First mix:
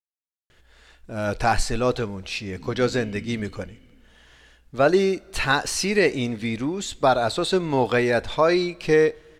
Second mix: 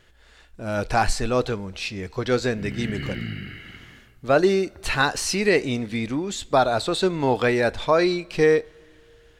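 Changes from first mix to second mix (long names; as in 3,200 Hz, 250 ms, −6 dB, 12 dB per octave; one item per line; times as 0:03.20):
speech: entry −0.50 s
background: remove formant resonators in series i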